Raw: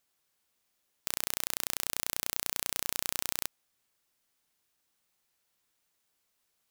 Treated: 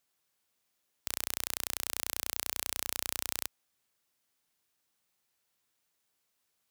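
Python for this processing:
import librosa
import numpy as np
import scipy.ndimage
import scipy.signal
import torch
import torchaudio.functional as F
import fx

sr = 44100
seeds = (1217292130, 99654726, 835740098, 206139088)

y = scipy.signal.sosfilt(scipy.signal.butter(2, 49.0, 'highpass', fs=sr, output='sos'), x)
y = y * librosa.db_to_amplitude(-1.5)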